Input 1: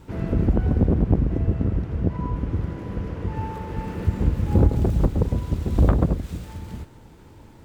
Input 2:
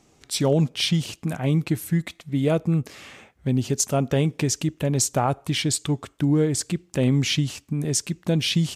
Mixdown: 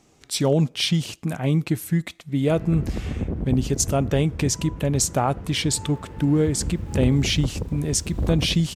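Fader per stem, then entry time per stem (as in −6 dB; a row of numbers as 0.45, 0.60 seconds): −8.0, +0.5 decibels; 2.40, 0.00 seconds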